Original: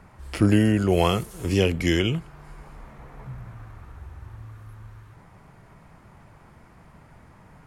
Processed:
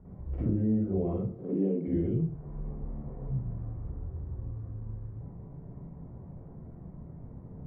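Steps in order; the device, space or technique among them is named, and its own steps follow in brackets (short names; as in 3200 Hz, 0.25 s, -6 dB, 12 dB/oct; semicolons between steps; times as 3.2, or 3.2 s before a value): 1.23–1.88 elliptic high-pass 180 Hz; television next door (compressor 3:1, threshold -35 dBFS, peak gain reduction 16 dB; LPF 380 Hz 12 dB/oct; reverb RT60 0.45 s, pre-delay 45 ms, DRR -8.5 dB); gain -2.5 dB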